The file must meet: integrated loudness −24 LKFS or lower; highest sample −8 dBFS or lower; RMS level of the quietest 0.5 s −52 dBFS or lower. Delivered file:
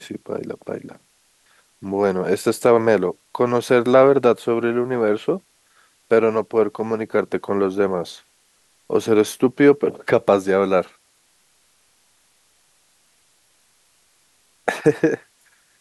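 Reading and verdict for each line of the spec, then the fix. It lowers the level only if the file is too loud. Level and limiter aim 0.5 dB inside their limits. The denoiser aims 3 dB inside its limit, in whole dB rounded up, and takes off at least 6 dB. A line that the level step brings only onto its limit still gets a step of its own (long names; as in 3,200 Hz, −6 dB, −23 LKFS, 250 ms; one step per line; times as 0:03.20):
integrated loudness −19.5 LKFS: out of spec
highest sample −3.0 dBFS: out of spec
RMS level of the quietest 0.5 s −61 dBFS: in spec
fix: level −5 dB
brickwall limiter −8.5 dBFS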